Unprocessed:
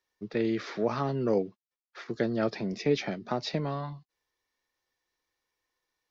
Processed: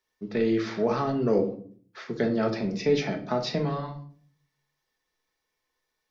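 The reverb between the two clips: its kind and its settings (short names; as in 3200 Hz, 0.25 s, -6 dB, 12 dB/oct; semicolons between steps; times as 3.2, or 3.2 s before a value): shoebox room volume 530 m³, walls furnished, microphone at 1.5 m; gain +1 dB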